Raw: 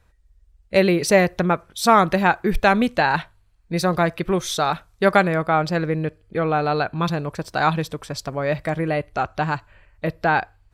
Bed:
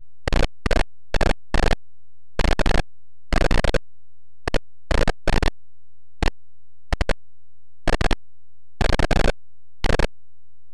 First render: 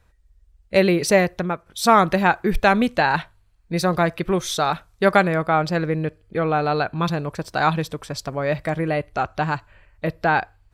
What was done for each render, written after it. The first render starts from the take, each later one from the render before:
0:01.08–0:01.66: fade out, to −8.5 dB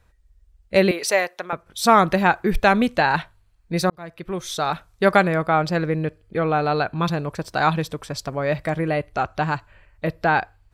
0:00.91–0:01.53: high-pass filter 610 Hz
0:03.90–0:04.88: fade in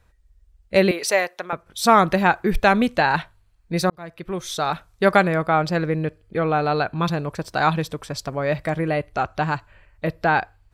no processing that can be heard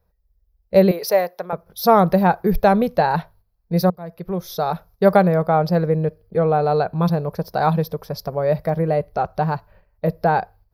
noise gate −48 dBFS, range −8 dB
drawn EQ curve 130 Hz 0 dB, 180 Hz +7 dB, 280 Hz −7 dB, 460 Hz +6 dB, 830 Hz +2 dB, 1,300 Hz −5 dB, 3,000 Hz −12 dB, 5,200 Hz 0 dB, 8,100 Hz −22 dB, 12,000 Hz +10 dB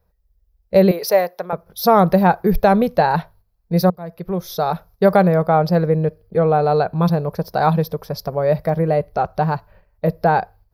level +2 dB
brickwall limiter −3 dBFS, peak gain reduction 2.5 dB

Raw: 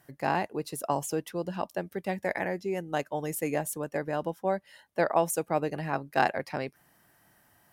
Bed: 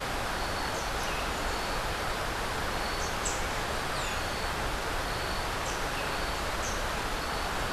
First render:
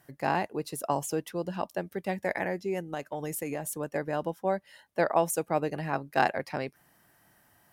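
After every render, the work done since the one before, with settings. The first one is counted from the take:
0:02.83–0:03.81: downward compressor, threshold −29 dBFS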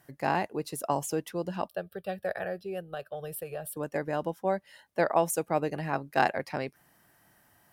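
0:01.68–0:03.77: phaser with its sweep stopped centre 1,400 Hz, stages 8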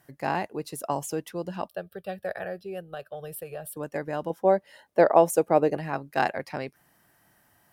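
0:04.30–0:05.77: parametric band 470 Hz +9 dB 2.1 octaves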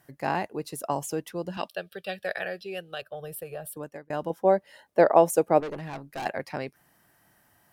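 0:01.57–0:03.02: meter weighting curve D
0:03.70–0:04.10: fade out
0:05.60–0:06.26: tube saturation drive 31 dB, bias 0.35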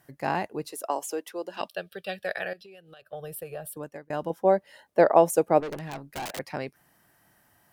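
0:00.72–0:01.61: high-pass filter 320 Hz 24 dB per octave
0:02.53–0:03.13: downward compressor 10 to 1, threshold −46 dBFS
0:05.65–0:06.39: wrap-around overflow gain 30 dB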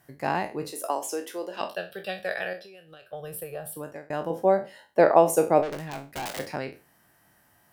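peak hold with a decay on every bin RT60 0.31 s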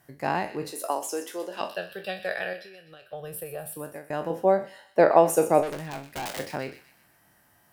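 delay with a high-pass on its return 124 ms, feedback 45%, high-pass 2,000 Hz, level −11 dB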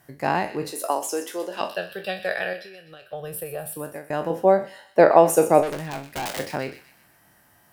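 level +4 dB
brickwall limiter −1 dBFS, peak gain reduction 1 dB

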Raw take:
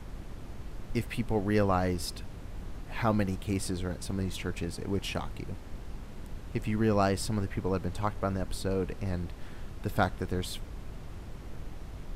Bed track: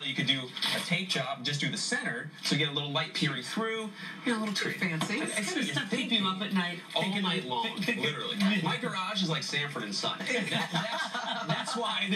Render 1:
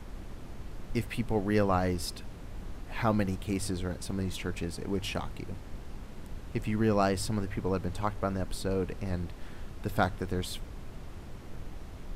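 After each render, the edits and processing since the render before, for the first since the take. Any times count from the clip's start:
hum removal 50 Hz, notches 3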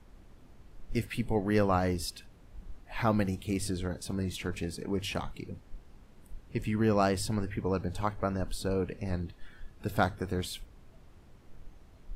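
noise reduction from a noise print 12 dB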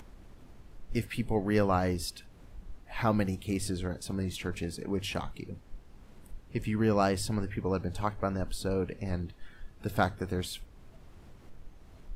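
upward compression, threshold −44 dBFS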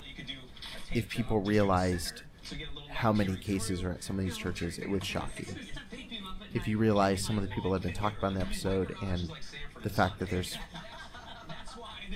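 mix in bed track −14 dB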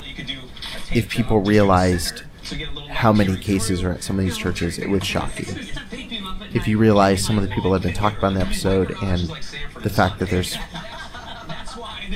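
level +12 dB
brickwall limiter −3 dBFS, peak gain reduction 3 dB

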